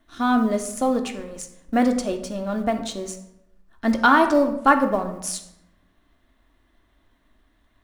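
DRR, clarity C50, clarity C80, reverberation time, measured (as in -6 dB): 5.0 dB, 10.0 dB, 12.5 dB, 0.85 s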